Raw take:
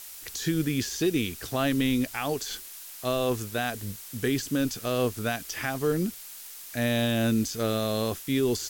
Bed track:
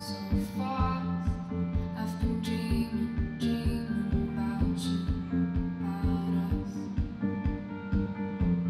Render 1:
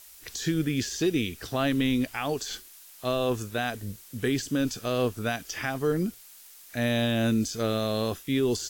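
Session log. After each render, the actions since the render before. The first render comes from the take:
noise reduction from a noise print 7 dB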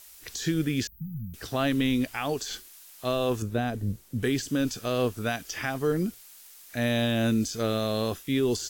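0:00.87–0:01.34: linear-phase brick-wall band-stop 210–14,000 Hz
0:03.42–0:04.23: tilt shelving filter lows +7.5 dB, about 680 Hz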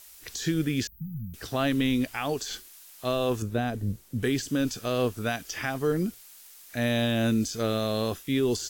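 no processing that can be heard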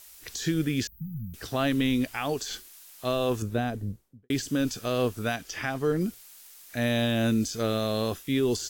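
0:03.59–0:04.30: fade out and dull
0:05.35–0:06.01: high-shelf EQ 8,400 Hz −7 dB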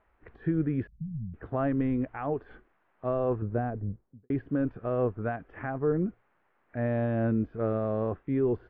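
Bessel low-pass filter 1,100 Hz, order 6
dynamic equaliser 240 Hz, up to −4 dB, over −43 dBFS, Q 4.4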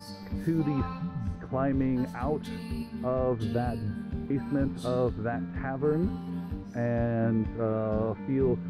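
mix in bed track −6 dB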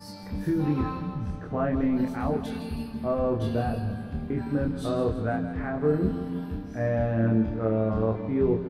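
double-tracking delay 27 ms −2.5 dB
repeating echo 164 ms, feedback 57%, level −12 dB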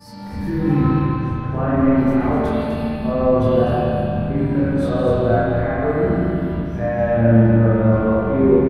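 on a send: single-tap delay 251 ms −6.5 dB
on the sum: spring reverb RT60 2.2 s, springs 35/45/49 ms, chirp 50 ms, DRR −8.5 dB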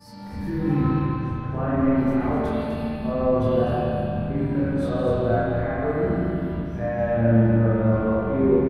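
level −5 dB

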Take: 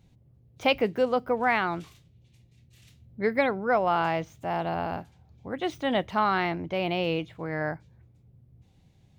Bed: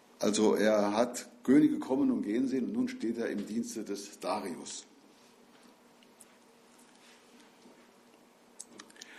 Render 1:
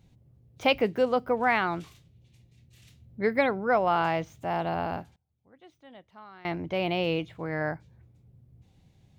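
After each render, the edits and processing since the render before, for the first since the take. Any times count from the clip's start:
0:04.86–0:06.75: duck −24 dB, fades 0.30 s logarithmic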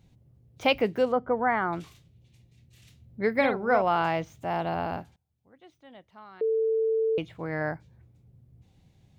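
0:01.12–0:01.73: Savitzky-Golay smoothing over 41 samples
0:03.35–0:03.82: double-tracking delay 44 ms −6.5 dB
0:06.41–0:07.18: beep over 445 Hz −22 dBFS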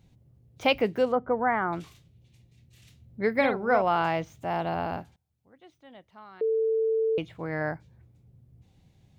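0:01.15–0:01.72: low-pass filter 2,600 Hz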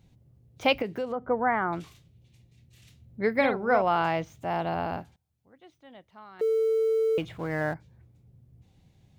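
0:00.82–0:01.24: downward compressor 3 to 1, threshold −29 dBFS
0:06.39–0:07.74: mu-law and A-law mismatch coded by mu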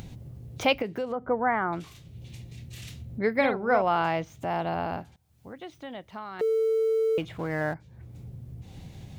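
upward compression, threshold −28 dBFS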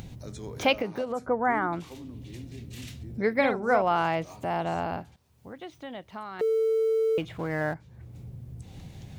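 mix in bed −15 dB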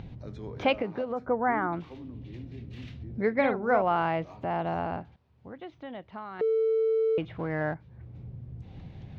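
high-frequency loss of the air 290 metres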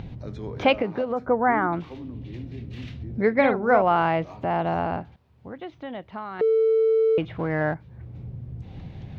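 level +5.5 dB

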